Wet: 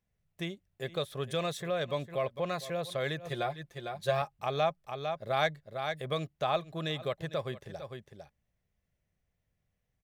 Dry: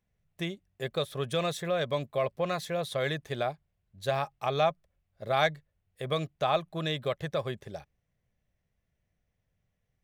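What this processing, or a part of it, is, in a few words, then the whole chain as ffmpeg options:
ducked delay: -filter_complex "[0:a]asplit=3[a][b][c];[b]adelay=453,volume=-6dB[d];[c]apad=whole_len=462337[e];[d][e]sidechaincompress=threshold=-47dB:ratio=10:attack=16:release=104[f];[a][f]amix=inputs=2:normalize=0,asettb=1/sr,asplit=3[g][h][i];[g]atrim=end=3.264[j];[h]atrim=start=3.26:end=4.22,asetpts=PTS-STARTPTS,afade=t=in:d=0.004:c=qsin,afade=t=out:st=0.956:d=0.004:c=qsin,aecho=1:1:5.7:0.75,atrim=end_sample=42336[k];[i]atrim=start=4.216[l];[j][k]acrossfade=d=0.004:c1=hsin:c2=qsin[m];[m][l]acrossfade=d=0.004:c1=qsin:c2=hsin,volume=-3dB"

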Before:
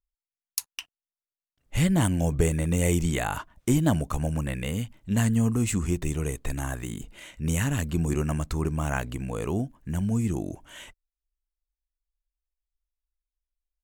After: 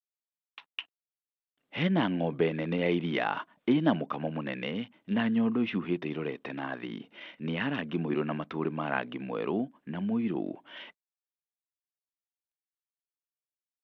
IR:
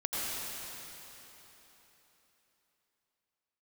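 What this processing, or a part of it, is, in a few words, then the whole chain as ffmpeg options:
Bluetooth headset: -af "highpass=f=200:w=0.5412,highpass=f=200:w=1.3066,aresample=8000,aresample=44100" -ar 32000 -c:a sbc -b:a 64k

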